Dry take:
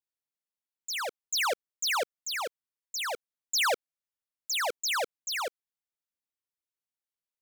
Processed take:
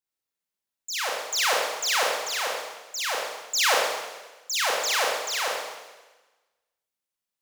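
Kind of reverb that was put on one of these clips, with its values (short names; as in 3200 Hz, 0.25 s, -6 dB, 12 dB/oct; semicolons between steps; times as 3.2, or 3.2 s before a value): Schroeder reverb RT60 1.2 s, combs from 29 ms, DRR -3 dB; gain +1 dB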